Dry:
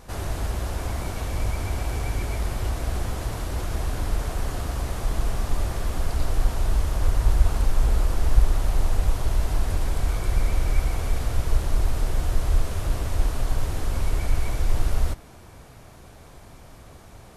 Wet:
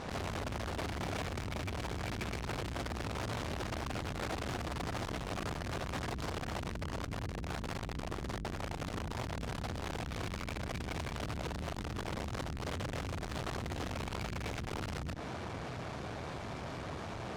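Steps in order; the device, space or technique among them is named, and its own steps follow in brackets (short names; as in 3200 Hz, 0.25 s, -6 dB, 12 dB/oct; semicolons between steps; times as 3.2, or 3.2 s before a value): valve radio (BPF 97–4400 Hz; tube stage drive 45 dB, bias 0.6; core saturation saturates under 200 Hz); gain +12 dB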